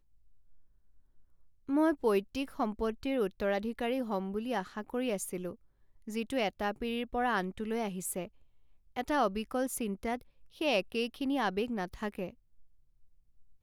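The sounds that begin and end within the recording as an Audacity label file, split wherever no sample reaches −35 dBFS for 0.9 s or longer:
1.690000	12.290000	sound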